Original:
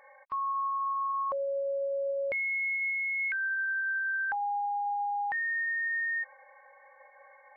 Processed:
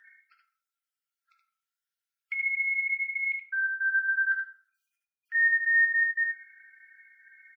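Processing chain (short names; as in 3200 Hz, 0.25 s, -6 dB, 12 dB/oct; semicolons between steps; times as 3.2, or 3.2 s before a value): random spectral dropouts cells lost 33%; 3.24–3.81 high shelf 2200 Hz -7.5 dB; 4.68–5.35 negative-ratio compressor -41 dBFS, ratio -1; brick-wall FIR high-pass 1300 Hz; echo 75 ms -4.5 dB; reverb RT60 0.65 s, pre-delay 5 ms, DRR 2 dB; gain +3 dB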